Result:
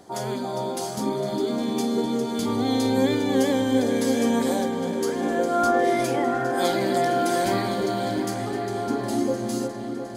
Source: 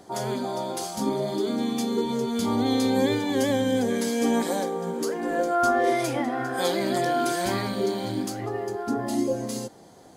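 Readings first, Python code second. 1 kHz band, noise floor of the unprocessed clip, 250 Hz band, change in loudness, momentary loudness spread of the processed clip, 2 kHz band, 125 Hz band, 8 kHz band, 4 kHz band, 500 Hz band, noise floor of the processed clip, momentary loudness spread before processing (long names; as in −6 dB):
+2.0 dB, −49 dBFS, +2.0 dB, +1.5 dB, 7 LU, +1.0 dB, +1.5 dB, +0.5 dB, +0.5 dB, +2.0 dB, −31 dBFS, 7 LU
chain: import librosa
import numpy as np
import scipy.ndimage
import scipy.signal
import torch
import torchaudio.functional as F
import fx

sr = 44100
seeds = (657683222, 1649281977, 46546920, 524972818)

y = fx.echo_opening(x, sr, ms=355, hz=750, octaves=2, feedback_pct=70, wet_db=-6)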